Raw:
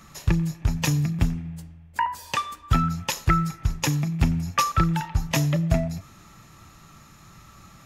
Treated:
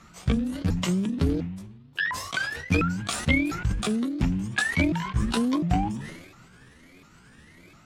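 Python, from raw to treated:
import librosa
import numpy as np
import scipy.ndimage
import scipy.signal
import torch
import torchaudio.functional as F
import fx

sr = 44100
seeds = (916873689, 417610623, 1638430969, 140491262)

y = fx.pitch_ramps(x, sr, semitones=11.5, every_ms=703)
y = scipy.signal.sosfilt(scipy.signal.butter(2, 11000.0, 'lowpass', fs=sr, output='sos'), y)
y = fx.high_shelf(y, sr, hz=7300.0, db=-8.0)
y = fx.hum_notches(y, sr, base_hz=50, count=4)
y = fx.sustainer(y, sr, db_per_s=53.0)
y = F.gain(torch.from_numpy(y), -1.5).numpy()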